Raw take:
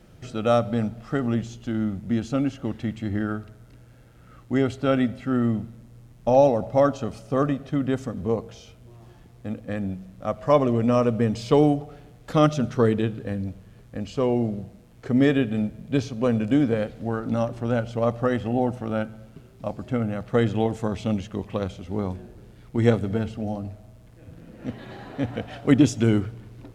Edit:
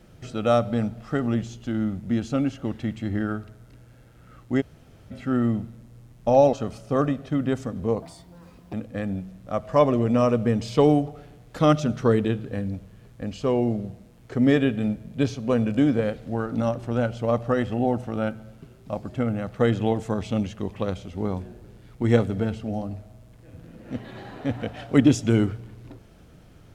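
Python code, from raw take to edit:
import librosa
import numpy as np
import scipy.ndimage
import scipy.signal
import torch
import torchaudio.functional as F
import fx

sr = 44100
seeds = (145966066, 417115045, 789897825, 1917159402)

y = fx.edit(x, sr, fx.room_tone_fill(start_s=4.61, length_s=0.5, crossfade_s=0.02),
    fx.cut(start_s=6.53, length_s=0.41),
    fx.speed_span(start_s=8.43, length_s=1.04, speed=1.46), tone=tone)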